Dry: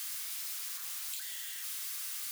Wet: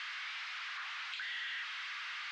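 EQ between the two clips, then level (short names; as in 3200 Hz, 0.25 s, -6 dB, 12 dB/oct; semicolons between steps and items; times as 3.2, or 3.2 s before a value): HPF 1400 Hz 12 dB/oct; LPF 2200 Hz 12 dB/oct; air absorption 190 m; +16.5 dB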